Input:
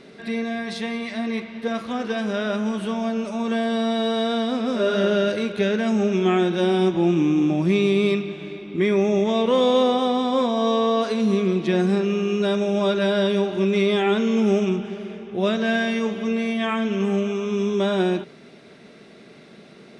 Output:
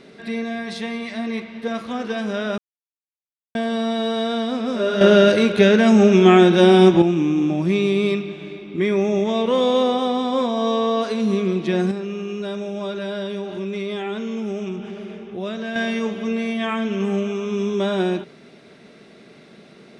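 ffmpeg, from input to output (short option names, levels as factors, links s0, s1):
-filter_complex "[0:a]asettb=1/sr,asplit=3[s0][s1][s2];[s0]atrim=end=11.914[s3];[s1]atrim=start=11.91:end=15.76,asetpts=PTS-STARTPTS,afade=t=in:d=0.004:c=qsin,afade=t=out:st=3.846:d=0.004:c=qsin,acompressor=threshold=0.0355:ratio=2:attack=3.2:release=140:knee=1:detection=peak[s4];[s2]atrim=start=15.756[s5];[s3][s4]acrossfade=d=0.004:c1=hsin:c2=qsin[s6];[s6][s5]acrossfade=d=0.004:c1=qsin:c2=hsin,asplit=5[s7][s8][s9][s10][s11];[s7]atrim=end=2.58,asetpts=PTS-STARTPTS,afade=t=out:st=2.576:d=0.004:c=hsin[s12];[s8]atrim=start=2.58:end=3.55,asetpts=PTS-STARTPTS,volume=0[s13];[s9]atrim=start=3.55:end=5.012,asetpts=PTS-STARTPTS,afade=t=in:d=0.004:c=hsin[s14];[s10]atrim=start=5.008:end=7.022,asetpts=PTS-STARTPTS,volume=2.51[s15];[s11]atrim=start=7.018[s16];[s12][s13][s14]concat=n=3:v=0:a=1[s17];[s17][s15]acrossfade=d=0.004:c1=hsin:c2=hsin[s18];[s18][s16]acrossfade=d=0.004:c1=hsin:c2=hsin"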